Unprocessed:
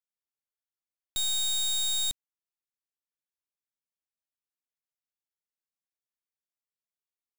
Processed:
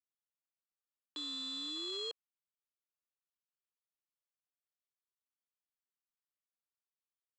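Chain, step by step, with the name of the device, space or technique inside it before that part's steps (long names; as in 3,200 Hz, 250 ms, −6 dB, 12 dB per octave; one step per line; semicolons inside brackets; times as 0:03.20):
voice changer toy (ring modulator whose carrier an LFO sweeps 480 Hz, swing 45%, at 0.35 Hz; loudspeaker in its box 500–4,400 Hz, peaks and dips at 720 Hz −7 dB, 1,200 Hz +4 dB, 2,100 Hz −9 dB, 3,900 Hz −5 dB)
level −3 dB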